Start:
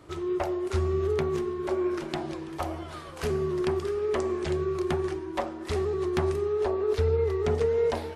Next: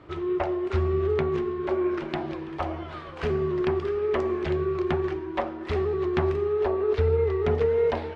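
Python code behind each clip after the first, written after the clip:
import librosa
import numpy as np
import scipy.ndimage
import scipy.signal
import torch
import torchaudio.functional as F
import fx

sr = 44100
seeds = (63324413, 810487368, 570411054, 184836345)

y = scipy.signal.sosfilt(scipy.signal.cheby1(2, 1.0, 2700.0, 'lowpass', fs=sr, output='sos'), x)
y = y * librosa.db_to_amplitude(3.0)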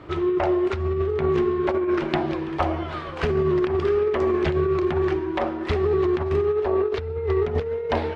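y = fx.over_compress(x, sr, threshold_db=-26.0, ratio=-0.5)
y = y * librosa.db_to_amplitude(5.0)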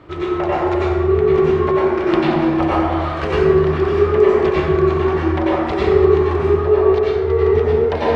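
y = fx.rev_plate(x, sr, seeds[0], rt60_s=1.5, hf_ratio=0.5, predelay_ms=80, drr_db=-8.0)
y = y * librosa.db_to_amplitude(-1.0)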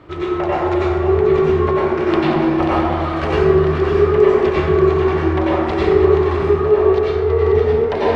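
y = x + 10.0 ** (-9.0 / 20.0) * np.pad(x, (int(536 * sr / 1000.0), 0))[:len(x)]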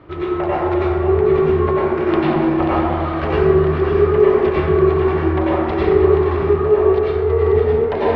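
y = fx.air_absorb(x, sr, metres=200.0)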